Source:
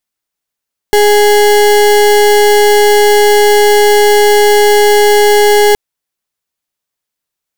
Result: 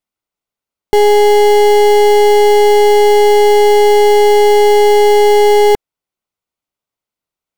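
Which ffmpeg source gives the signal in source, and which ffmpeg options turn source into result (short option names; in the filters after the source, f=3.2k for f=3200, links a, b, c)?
-f lavfi -i "aevalsrc='0.473*(2*lt(mod(415*t,1),0.33)-1)':d=4.82:s=44100"
-af "highshelf=f=2.9k:g=-10.5,bandreject=f=1.7k:w=6"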